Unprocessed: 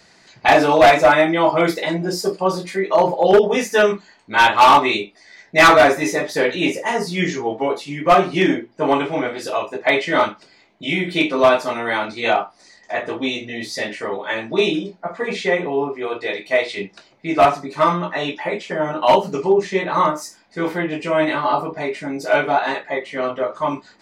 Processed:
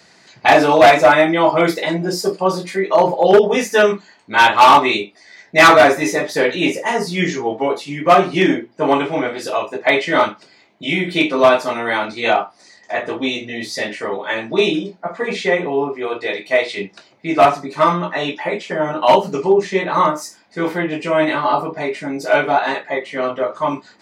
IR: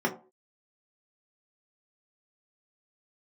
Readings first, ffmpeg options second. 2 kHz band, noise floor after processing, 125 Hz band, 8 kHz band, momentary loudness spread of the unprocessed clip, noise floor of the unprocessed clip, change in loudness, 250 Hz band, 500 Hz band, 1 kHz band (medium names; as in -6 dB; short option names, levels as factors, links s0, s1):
+2.0 dB, -51 dBFS, +1.5 dB, +2.0 dB, 13 LU, -53 dBFS, +2.0 dB, +2.0 dB, +2.0 dB, +2.0 dB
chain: -af "highpass=89,volume=1.26"